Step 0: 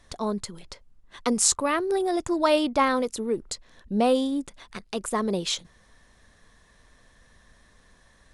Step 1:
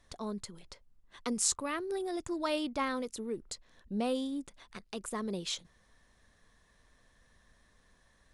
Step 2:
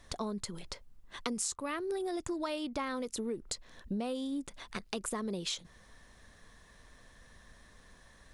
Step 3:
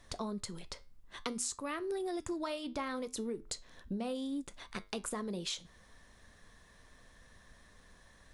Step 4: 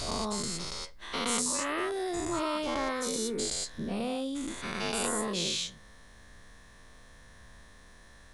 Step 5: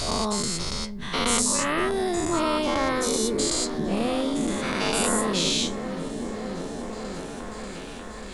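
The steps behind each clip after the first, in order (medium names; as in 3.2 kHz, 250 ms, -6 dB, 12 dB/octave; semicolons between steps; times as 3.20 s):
dynamic bell 740 Hz, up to -5 dB, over -35 dBFS, Q 0.88; trim -8.5 dB
compression 8:1, threshold -41 dBFS, peak gain reduction 15.5 dB; trim +8 dB
flange 0.63 Hz, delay 9.7 ms, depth 2.3 ms, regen -78%; trim +2.5 dB
every event in the spectrogram widened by 240 ms
delay with an opening low-pass 589 ms, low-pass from 200 Hz, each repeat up 1 oct, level -3 dB; trim +7 dB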